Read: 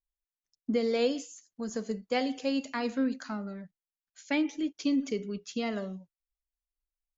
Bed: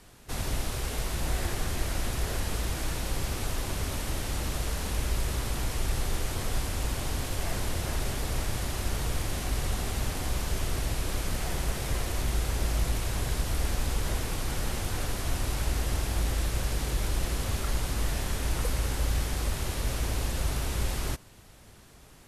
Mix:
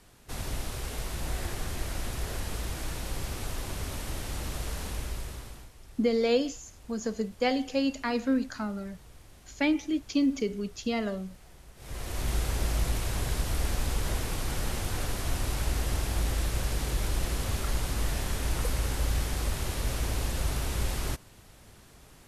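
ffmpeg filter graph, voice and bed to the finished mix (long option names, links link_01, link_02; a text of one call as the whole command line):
ffmpeg -i stem1.wav -i stem2.wav -filter_complex "[0:a]adelay=5300,volume=2.5dB[link_01];[1:a]volume=18dB,afade=type=out:start_time=4.82:duration=0.89:silence=0.11885,afade=type=in:start_time=11.76:duration=0.56:silence=0.0841395[link_02];[link_01][link_02]amix=inputs=2:normalize=0" out.wav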